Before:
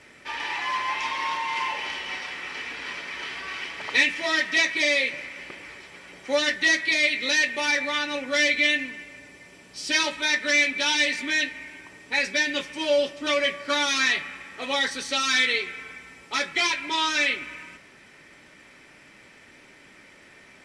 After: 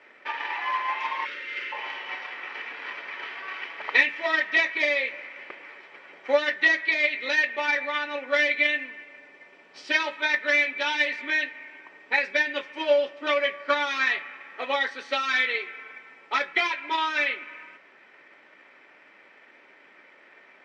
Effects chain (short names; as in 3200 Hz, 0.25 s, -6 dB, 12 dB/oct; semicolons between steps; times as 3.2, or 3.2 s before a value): transient shaper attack +6 dB, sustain -1 dB; spectral gain 1.25–1.72, 590–1200 Hz -30 dB; BPF 440–2300 Hz